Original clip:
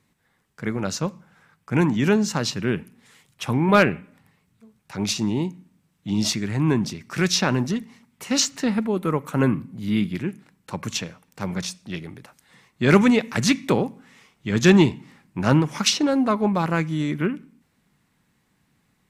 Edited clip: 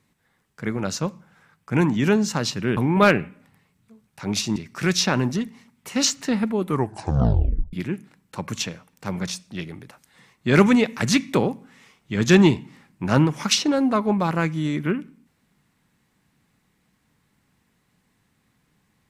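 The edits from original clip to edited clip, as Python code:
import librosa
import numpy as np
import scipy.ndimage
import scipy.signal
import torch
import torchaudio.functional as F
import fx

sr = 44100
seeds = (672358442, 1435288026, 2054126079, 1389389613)

y = fx.edit(x, sr, fx.cut(start_s=2.77, length_s=0.72),
    fx.cut(start_s=5.28, length_s=1.63),
    fx.tape_stop(start_s=9.0, length_s=1.08), tone=tone)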